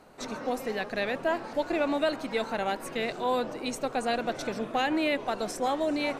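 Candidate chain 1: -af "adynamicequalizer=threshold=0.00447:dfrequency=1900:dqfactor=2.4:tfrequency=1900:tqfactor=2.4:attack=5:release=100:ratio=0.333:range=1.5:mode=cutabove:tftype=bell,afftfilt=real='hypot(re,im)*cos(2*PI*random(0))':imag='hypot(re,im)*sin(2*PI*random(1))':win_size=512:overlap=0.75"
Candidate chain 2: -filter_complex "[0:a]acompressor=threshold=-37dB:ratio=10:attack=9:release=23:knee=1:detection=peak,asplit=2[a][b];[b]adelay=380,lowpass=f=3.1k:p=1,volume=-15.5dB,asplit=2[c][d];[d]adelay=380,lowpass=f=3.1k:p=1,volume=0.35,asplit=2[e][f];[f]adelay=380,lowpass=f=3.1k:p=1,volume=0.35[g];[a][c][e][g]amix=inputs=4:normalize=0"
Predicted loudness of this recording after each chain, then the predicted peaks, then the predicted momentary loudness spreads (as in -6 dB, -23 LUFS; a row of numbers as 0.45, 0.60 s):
-36.5, -37.5 LUFS; -19.5, -24.5 dBFS; 6, 1 LU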